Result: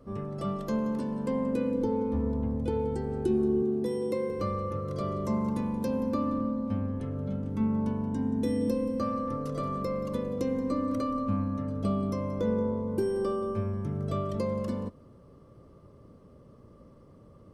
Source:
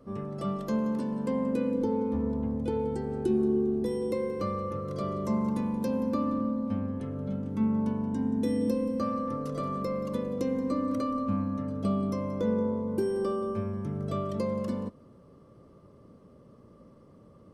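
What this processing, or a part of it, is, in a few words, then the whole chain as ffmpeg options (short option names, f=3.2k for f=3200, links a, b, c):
low shelf boost with a cut just above: -filter_complex "[0:a]lowshelf=f=110:g=7.5,equalizer=f=200:t=o:w=0.8:g=-3,asettb=1/sr,asplit=3[a][b][c];[a]atrim=end=3.624[d];[b]atrim=start=3.62:end=4.3,asetpts=PTS-STARTPTS,afade=t=in:d=0.004:c=qsin,afade=t=out:st=0.676:d=0.004:c=qsin,highpass=f=110:w=0.5412,highpass=f=110:w=1.3066[e];[c]atrim=start=4.296[f];[d][e]acrossfade=d=0.004:c1=hsin:c2=qsin[g];[g][f]acrossfade=d=0.004:c1=qsin:c2=hsin"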